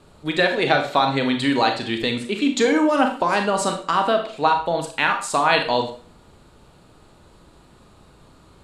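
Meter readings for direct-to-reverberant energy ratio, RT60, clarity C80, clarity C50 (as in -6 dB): 4.5 dB, 0.45 s, 13.0 dB, 8.5 dB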